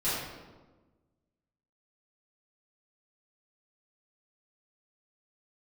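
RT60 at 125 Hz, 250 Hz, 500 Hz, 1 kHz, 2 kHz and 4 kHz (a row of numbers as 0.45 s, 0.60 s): 1.6 s, 1.6 s, 1.4 s, 1.2 s, 0.90 s, 0.80 s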